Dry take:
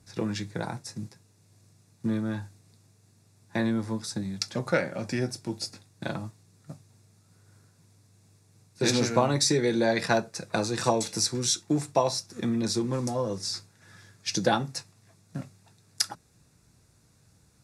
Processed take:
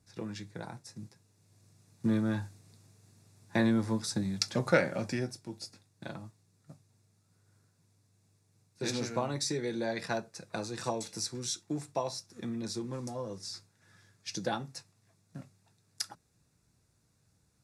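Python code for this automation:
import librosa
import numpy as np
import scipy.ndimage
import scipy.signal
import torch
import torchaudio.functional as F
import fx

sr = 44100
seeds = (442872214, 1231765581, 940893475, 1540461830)

y = fx.gain(x, sr, db=fx.line((0.84, -9.5), (2.15, 0.0), (4.96, 0.0), (5.41, -9.5)))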